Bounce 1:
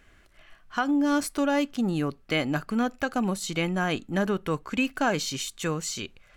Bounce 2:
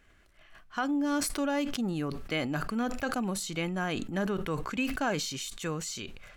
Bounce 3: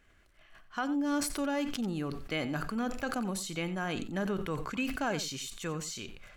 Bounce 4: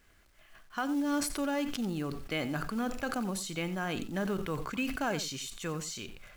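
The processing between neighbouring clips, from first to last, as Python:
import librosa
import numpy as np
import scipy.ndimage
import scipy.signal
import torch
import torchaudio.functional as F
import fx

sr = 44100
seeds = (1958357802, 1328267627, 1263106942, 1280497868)

y1 = fx.sustainer(x, sr, db_per_s=44.0)
y1 = y1 * 10.0 ** (-5.5 / 20.0)
y2 = y1 + 10.0 ** (-14.0 / 20.0) * np.pad(y1, (int(90 * sr / 1000.0), 0))[:len(y1)]
y2 = y2 * 10.0 ** (-2.5 / 20.0)
y3 = fx.quant_companded(y2, sr, bits=6)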